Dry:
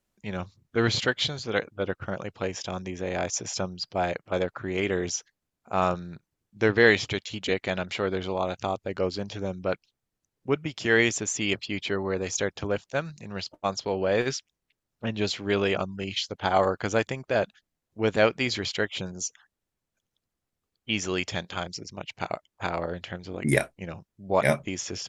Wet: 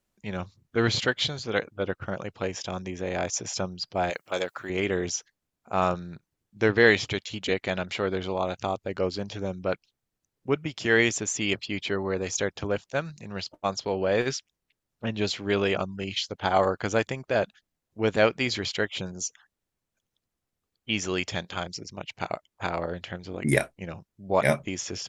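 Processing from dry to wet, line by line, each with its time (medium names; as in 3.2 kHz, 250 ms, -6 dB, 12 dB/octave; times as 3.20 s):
4.10–4.70 s: RIAA curve recording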